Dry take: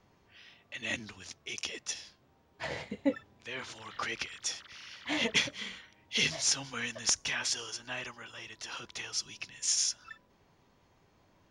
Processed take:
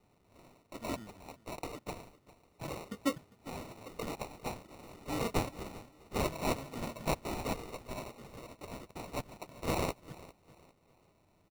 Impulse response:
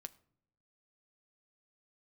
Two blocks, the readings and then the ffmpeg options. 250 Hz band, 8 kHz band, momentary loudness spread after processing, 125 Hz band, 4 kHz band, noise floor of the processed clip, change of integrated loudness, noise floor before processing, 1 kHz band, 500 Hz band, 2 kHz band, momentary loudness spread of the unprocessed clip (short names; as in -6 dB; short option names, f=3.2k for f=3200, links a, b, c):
+1.0 dB, -15.5 dB, 16 LU, +7.5 dB, -14.0 dB, -69 dBFS, -6.0 dB, -68 dBFS, +5.0 dB, +3.5 dB, -10.5 dB, 16 LU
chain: -filter_complex "[0:a]acrusher=samples=27:mix=1:aa=0.000001,asplit=2[a][b];[b]aecho=0:1:401|802|1203:0.112|0.0381|0.013[c];[a][c]amix=inputs=2:normalize=0,volume=-3dB"